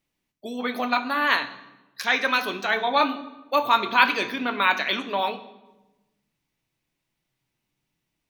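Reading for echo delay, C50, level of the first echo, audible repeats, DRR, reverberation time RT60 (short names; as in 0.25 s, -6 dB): none, 14.0 dB, none, none, 11.5 dB, 1.1 s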